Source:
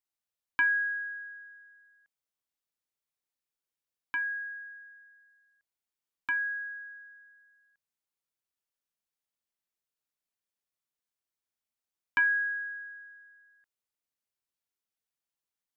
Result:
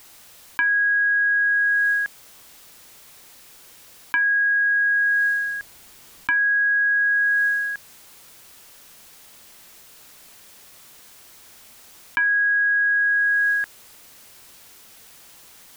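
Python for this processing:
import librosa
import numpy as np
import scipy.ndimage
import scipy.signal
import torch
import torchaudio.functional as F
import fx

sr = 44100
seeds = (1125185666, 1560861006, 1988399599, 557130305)

y = fx.low_shelf(x, sr, hz=230.0, db=6.0, at=(4.62, 6.96))
y = fx.env_flatten(y, sr, amount_pct=100)
y = y * 10.0 ** (3.5 / 20.0)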